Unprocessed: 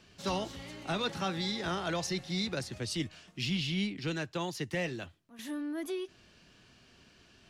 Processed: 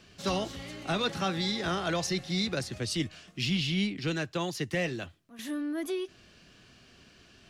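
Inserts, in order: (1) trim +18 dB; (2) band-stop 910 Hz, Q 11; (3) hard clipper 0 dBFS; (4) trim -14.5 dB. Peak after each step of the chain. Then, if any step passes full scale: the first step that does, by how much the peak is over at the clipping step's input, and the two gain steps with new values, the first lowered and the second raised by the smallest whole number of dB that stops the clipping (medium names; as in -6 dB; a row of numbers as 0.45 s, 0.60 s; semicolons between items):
-2.0 dBFS, -2.5 dBFS, -2.5 dBFS, -17.0 dBFS; nothing clips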